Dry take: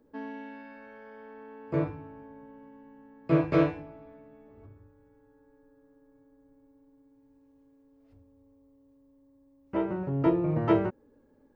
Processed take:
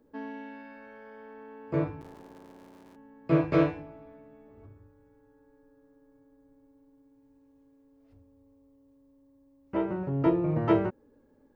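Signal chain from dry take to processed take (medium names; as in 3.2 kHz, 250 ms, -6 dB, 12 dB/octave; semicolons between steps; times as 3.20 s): 2.00–2.96 s: cycle switcher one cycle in 3, muted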